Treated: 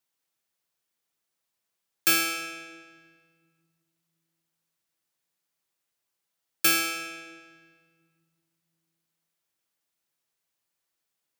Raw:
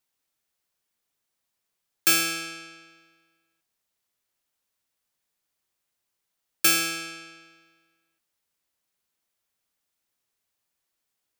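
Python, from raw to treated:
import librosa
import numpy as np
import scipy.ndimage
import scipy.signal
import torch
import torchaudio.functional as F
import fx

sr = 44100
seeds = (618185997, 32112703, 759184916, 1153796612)

y = fx.low_shelf(x, sr, hz=70.0, db=-9.0)
y = fx.room_shoebox(y, sr, seeds[0], volume_m3=3100.0, walls='mixed', distance_m=0.72)
y = y * 10.0 ** (-2.0 / 20.0)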